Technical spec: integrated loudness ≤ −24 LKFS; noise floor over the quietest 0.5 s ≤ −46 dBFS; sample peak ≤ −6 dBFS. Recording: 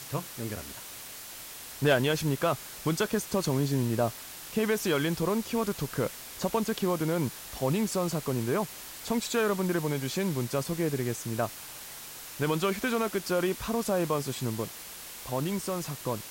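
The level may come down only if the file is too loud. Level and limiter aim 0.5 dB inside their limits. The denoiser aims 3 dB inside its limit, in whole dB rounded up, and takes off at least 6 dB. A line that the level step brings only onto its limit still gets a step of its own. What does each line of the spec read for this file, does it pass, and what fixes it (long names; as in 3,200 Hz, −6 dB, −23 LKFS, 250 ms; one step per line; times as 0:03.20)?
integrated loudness −30.0 LKFS: in spec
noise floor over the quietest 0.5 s −44 dBFS: out of spec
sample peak −13.0 dBFS: in spec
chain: broadband denoise 6 dB, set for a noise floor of −44 dBFS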